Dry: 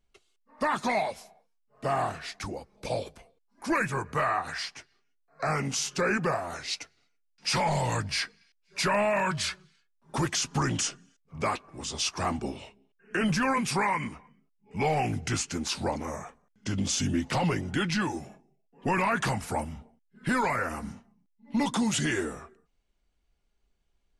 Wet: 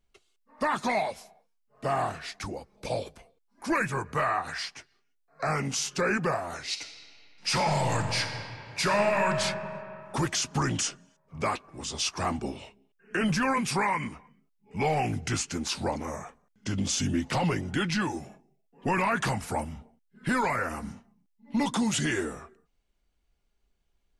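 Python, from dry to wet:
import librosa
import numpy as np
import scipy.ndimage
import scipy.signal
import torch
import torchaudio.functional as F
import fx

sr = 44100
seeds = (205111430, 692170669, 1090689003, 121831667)

y = fx.reverb_throw(x, sr, start_s=6.68, length_s=2.71, rt60_s=2.7, drr_db=5.0)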